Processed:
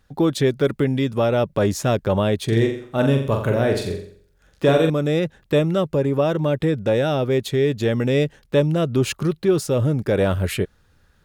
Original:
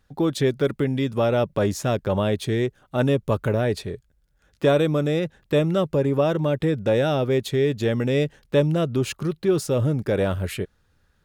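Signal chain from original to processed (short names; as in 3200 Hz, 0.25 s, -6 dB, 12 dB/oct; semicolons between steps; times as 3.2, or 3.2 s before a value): 2.44–4.9 flutter echo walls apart 7.5 m, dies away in 0.53 s; vocal rider within 4 dB 0.5 s; gain +2 dB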